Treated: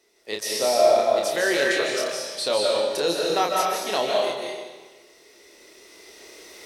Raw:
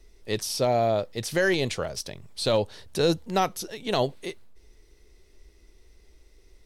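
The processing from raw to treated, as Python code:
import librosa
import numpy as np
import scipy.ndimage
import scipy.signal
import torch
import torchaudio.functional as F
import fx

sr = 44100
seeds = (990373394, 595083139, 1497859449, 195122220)

y = fx.recorder_agc(x, sr, target_db=-19.5, rise_db_per_s=7.5, max_gain_db=30)
y = scipy.signal.sosfilt(scipy.signal.butter(2, 410.0, 'highpass', fs=sr, output='sos'), y)
y = fx.doubler(y, sr, ms=29.0, db=-5)
y = fx.rev_freeverb(y, sr, rt60_s=1.4, hf_ratio=0.95, predelay_ms=110, drr_db=-1.5)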